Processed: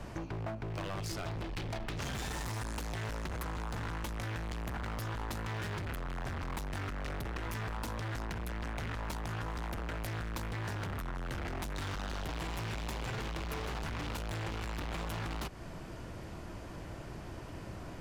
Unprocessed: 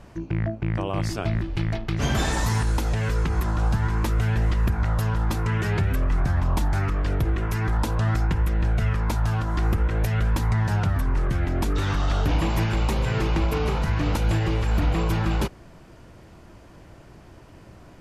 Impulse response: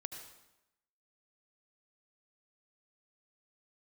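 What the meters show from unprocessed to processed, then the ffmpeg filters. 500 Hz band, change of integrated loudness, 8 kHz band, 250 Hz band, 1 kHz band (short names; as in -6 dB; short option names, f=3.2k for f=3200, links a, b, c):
-12.0 dB, -15.0 dB, -9.0 dB, -14.0 dB, -10.5 dB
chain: -filter_complex "[0:a]asoftclip=type=hard:threshold=-31dB,acrossover=split=170|650[a][b][c];[a]acompressor=threshold=-44dB:ratio=4[d];[b]acompressor=threshold=-49dB:ratio=4[e];[c]acompressor=threshold=-43dB:ratio=4[f];[d][e][f]amix=inputs=3:normalize=0,volume=3dB"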